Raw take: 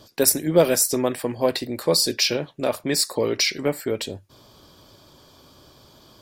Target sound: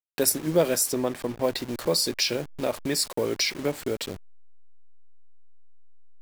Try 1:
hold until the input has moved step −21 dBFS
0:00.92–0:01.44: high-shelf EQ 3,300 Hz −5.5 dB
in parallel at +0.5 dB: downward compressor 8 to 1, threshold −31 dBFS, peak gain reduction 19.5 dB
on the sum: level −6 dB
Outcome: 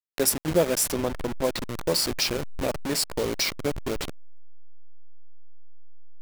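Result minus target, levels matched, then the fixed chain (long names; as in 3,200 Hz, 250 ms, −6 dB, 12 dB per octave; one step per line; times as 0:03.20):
hold until the input has moved: distortion +11 dB
hold until the input has moved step −31.5 dBFS
0:00.92–0:01.44: high-shelf EQ 3,300 Hz −5.5 dB
in parallel at +0.5 dB: downward compressor 8 to 1, threshold −31 dBFS, peak gain reduction 20 dB
on the sum: level −6 dB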